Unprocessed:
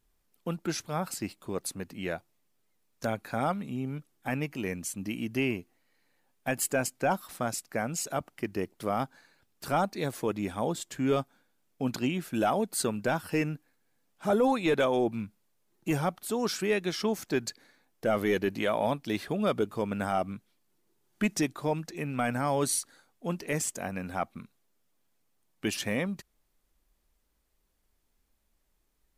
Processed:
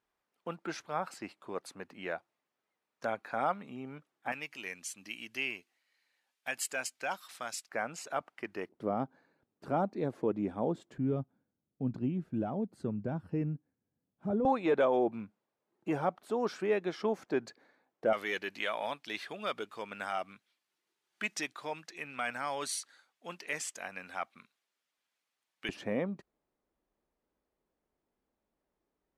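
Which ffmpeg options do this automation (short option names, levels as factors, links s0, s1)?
-af "asetnsamples=n=441:p=0,asendcmd='4.32 bandpass f 3200;7.69 bandpass f 1300;8.69 bandpass f 330;10.98 bandpass f 120;14.45 bandpass f 660;18.13 bandpass f 2500;25.69 bandpass f 460',bandpass=f=1100:t=q:w=0.67:csg=0"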